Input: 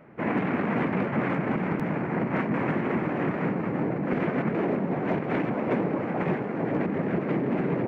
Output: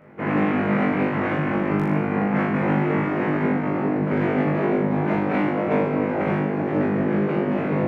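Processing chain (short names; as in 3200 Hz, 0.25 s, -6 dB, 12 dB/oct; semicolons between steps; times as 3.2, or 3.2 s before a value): flutter echo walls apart 3.4 m, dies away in 0.74 s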